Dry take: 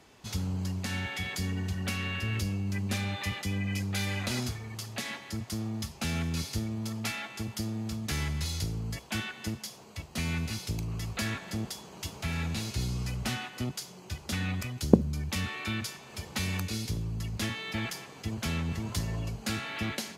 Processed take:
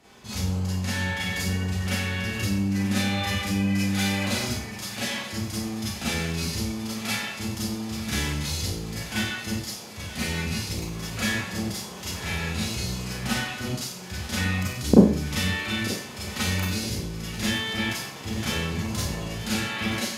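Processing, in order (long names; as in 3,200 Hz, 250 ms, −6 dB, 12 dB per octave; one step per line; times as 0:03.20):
on a send: feedback echo with a high-pass in the loop 934 ms, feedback 68%, level −14 dB
on the sum: four-comb reverb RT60 0.51 s, combs from 30 ms, DRR −8.5 dB
level −2 dB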